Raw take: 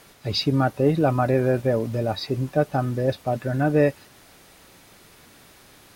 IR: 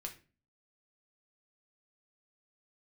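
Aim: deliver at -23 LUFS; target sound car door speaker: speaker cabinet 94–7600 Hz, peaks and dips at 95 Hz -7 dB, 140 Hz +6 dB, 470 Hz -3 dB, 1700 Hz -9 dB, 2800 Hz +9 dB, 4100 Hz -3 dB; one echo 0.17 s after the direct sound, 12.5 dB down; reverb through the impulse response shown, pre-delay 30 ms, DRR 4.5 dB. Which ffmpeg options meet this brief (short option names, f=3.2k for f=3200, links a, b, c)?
-filter_complex "[0:a]aecho=1:1:170:0.237,asplit=2[a][b];[1:a]atrim=start_sample=2205,adelay=30[c];[b][c]afir=irnorm=-1:irlink=0,volume=-2dB[d];[a][d]amix=inputs=2:normalize=0,highpass=94,equalizer=f=95:t=q:w=4:g=-7,equalizer=f=140:t=q:w=4:g=6,equalizer=f=470:t=q:w=4:g=-3,equalizer=f=1.7k:t=q:w=4:g=-9,equalizer=f=2.8k:t=q:w=4:g=9,equalizer=f=4.1k:t=q:w=4:g=-3,lowpass=f=7.6k:w=0.5412,lowpass=f=7.6k:w=1.3066,volume=-1.5dB"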